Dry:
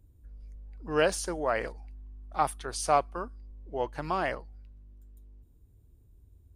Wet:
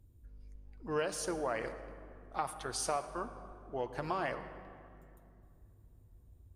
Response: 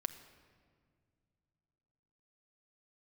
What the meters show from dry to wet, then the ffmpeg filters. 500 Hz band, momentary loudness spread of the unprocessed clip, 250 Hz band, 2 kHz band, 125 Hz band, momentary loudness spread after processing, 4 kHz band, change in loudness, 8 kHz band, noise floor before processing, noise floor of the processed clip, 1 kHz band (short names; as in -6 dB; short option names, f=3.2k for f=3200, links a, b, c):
-7.0 dB, 22 LU, -5.0 dB, -7.5 dB, -6.0 dB, 21 LU, -5.5 dB, -7.0 dB, -3.5 dB, -60 dBFS, -61 dBFS, -8.0 dB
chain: -filter_complex "[0:a]acompressor=threshold=-29dB:ratio=6[a];[1:a]atrim=start_sample=2205,asetrate=30429,aresample=44100[b];[a][b]afir=irnorm=-1:irlink=0,volume=-3dB"